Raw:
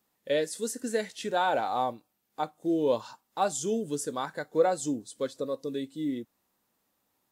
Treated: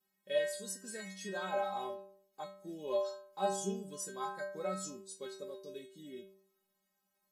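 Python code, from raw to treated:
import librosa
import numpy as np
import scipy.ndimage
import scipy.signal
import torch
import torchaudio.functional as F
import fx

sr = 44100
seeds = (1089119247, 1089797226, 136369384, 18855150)

y = fx.stiff_resonator(x, sr, f0_hz=190.0, decay_s=0.68, stiffness=0.008)
y = y * 10.0 ** (10.0 / 20.0)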